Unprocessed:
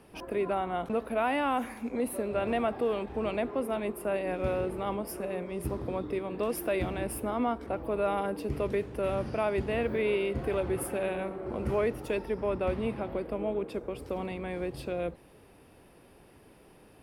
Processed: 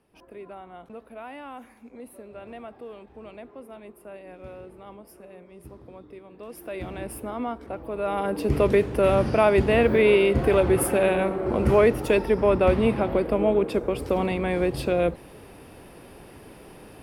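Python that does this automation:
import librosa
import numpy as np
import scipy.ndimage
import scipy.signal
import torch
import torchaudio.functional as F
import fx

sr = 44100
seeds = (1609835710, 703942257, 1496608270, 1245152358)

y = fx.gain(x, sr, db=fx.line((6.38, -11.5), (6.95, -1.0), (7.93, -1.0), (8.54, 10.5)))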